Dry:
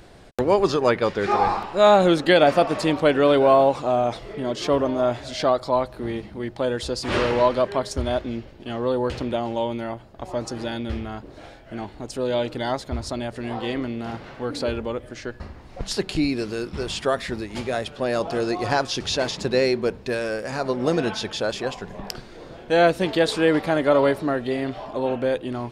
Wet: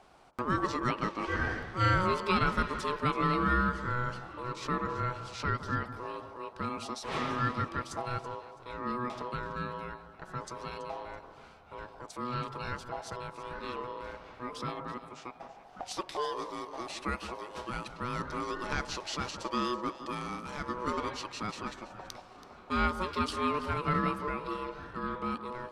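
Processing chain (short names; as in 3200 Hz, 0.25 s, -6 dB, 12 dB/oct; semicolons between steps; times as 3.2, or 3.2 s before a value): ring modulator 740 Hz; echo with dull and thin repeats by turns 0.165 s, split 1500 Hz, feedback 56%, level -10.5 dB; gain -9 dB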